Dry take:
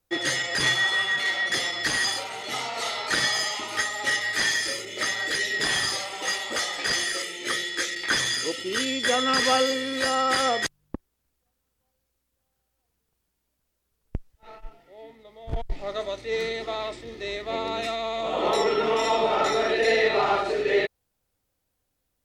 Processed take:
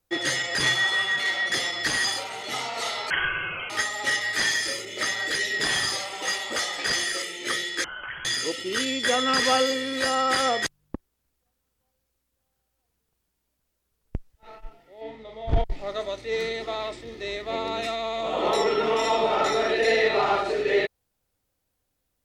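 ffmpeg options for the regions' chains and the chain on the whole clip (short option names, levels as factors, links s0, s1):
-filter_complex "[0:a]asettb=1/sr,asplit=3[s0][s1][s2];[s0]atrim=end=3.104[s3];[s1]atrim=start=3.1:end=3.7,asetpts=PTS-STARTPTS,afade=t=in:d=0.004:c=qsin,afade=t=out:st=0.596:d=0.004:c=qsin,asplit=2[s4][s5];[s5]adelay=40,volume=0.398[s6];[s4][s6]amix=inputs=2:normalize=0,atrim=end_sample=26460,lowpass=f=2900:t=q:w=0.5098,lowpass=f=2900:t=q:w=0.6013,lowpass=f=2900:t=q:w=0.9,lowpass=f=2900:t=q:w=2.563,afreqshift=-3400[s7];[s2]atrim=start=3.696[s8];[s3][s7]acrossfade=d=0.004:c1=hsin:c2=qsin[s9];[s9][s8]acrossfade=d=0.004:c1=qsin:c2=hsin,asettb=1/sr,asplit=3[s10][s11][s12];[s10]atrim=end=7.844[s13];[s11]atrim=start=7.84:end=8.25,asetpts=PTS-STARTPTS,afade=t=in:d=0.004:c=qsin,afade=t=out:st=0.406:d=0.004:c=qsin,acompressor=threshold=0.0316:ratio=16:attack=3.2:release=140:knee=1:detection=peak,lowpass=f=2900:t=q:w=0.5098,lowpass=f=2900:t=q:w=0.6013,lowpass=f=2900:t=q:w=0.9,lowpass=f=2900:t=q:w=2.563,afreqshift=-3400[s14];[s12]atrim=start=8.246[s15];[s13][s14]acrossfade=d=0.004:c1=hsin:c2=qsin[s16];[s16][s15]acrossfade=d=0.004:c1=qsin:c2=hsin,asettb=1/sr,asplit=3[s17][s18][s19];[s17]atrim=end=15.014[s20];[s18]atrim=start=15.01:end=15.64,asetpts=PTS-STARTPTS,afade=t=in:d=0.004:c=qsin,afade=t=out:st=0.626:d=0.004:c=qsin,lowpass=5200,acontrast=61,asplit=2[s21][s22];[s22]adelay=41,volume=0.631[s23];[s21][s23]amix=inputs=2:normalize=0,atrim=end_sample=27783[s24];[s19]atrim=start=15.636[s25];[s20][s24]acrossfade=d=0.004:c1=hsin:c2=qsin[s26];[s26][s25]acrossfade=d=0.004:c1=qsin:c2=hsin"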